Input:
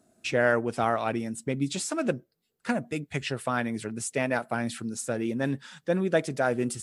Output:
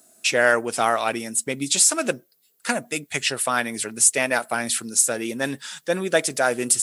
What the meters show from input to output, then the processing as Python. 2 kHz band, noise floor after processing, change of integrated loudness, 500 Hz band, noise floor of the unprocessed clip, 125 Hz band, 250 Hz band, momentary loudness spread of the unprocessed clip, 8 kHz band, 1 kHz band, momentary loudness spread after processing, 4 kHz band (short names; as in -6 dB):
+8.0 dB, -64 dBFS, +7.5 dB, +3.5 dB, -76 dBFS, -4.5 dB, -0.5 dB, 7 LU, +18.0 dB, +6.0 dB, 11 LU, +12.5 dB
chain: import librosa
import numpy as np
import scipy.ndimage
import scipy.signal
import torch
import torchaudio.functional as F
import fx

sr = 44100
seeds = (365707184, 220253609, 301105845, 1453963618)

y = fx.riaa(x, sr, side='recording')
y = y * librosa.db_to_amplitude(6.0)